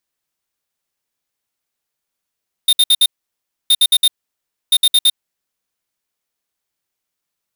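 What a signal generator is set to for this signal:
beeps in groups square 3,650 Hz, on 0.05 s, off 0.06 s, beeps 4, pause 0.64 s, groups 3, −10.5 dBFS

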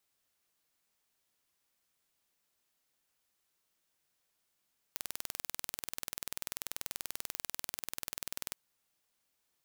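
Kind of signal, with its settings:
impulse train 20.5 per second, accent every 0, −10 dBFS 3.59 s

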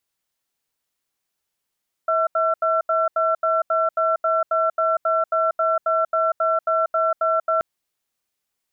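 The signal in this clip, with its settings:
tone pair in a cadence 648 Hz, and 1,350 Hz, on 0.19 s, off 0.08 s, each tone −19.5 dBFS 5.53 s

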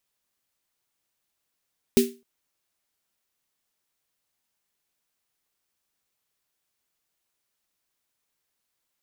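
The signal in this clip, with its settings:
synth snare length 0.26 s, tones 240 Hz, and 390 Hz, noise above 2,000 Hz, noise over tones −9 dB, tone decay 0.29 s, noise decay 0.27 s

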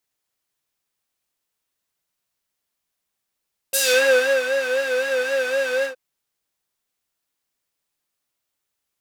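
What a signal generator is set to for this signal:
subtractive patch with vibrato C5, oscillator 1 triangle, oscillator 2 square, interval 0 semitones, oscillator 2 level −9 dB, sub −21 dB, noise −11 dB, filter bandpass, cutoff 1,000 Hz, Q 0.89, filter envelope 3.5 octaves, filter decay 0.29 s, filter sustain 20%, attack 13 ms, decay 0.70 s, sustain −10 dB, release 0.11 s, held 2.11 s, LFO 3.9 Hz, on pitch 78 cents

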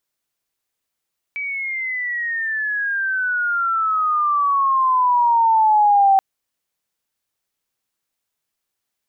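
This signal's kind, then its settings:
glide logarithmic 2,300 Hz → 770 Hz −23 dBFS → −10 dBFS 4.83 s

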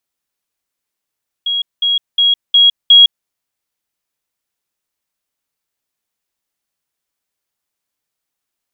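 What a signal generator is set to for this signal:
level staircase 3,300 Hz −14 dBFS, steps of 3 dB, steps 5, 0.16 s 0.20 s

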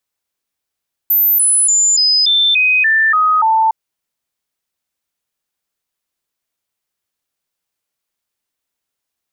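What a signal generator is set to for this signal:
stepped sweep 14,200 Hz down, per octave 2, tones 9, 0.29 s, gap 0.00 s −9 dBFS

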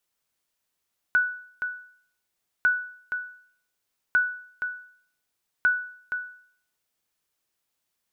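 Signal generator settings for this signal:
ping with an echo 1,480 Hz, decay 0.56 s, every 1.50 s, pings 4, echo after 0.47 s, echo −8.5 dB −14 dBFS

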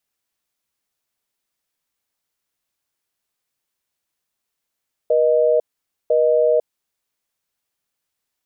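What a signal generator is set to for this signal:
call progress tone busy tone, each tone −15.5 dBFS 1.54 s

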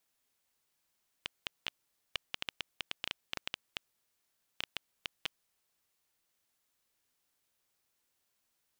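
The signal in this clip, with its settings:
Geiger counter clicks 5.8 per second −16.5 dBFS 4.63 s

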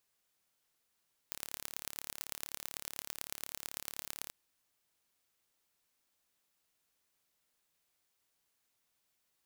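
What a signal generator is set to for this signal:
impulse train 35.9 per second, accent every 4, −10.5 dBFS 2.98 s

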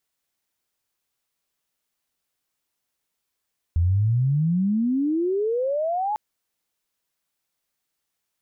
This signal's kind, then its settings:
glide logarithmic 81 Hz → 870 Hz −16.5 dBFS → −22 dBFS 2.40 s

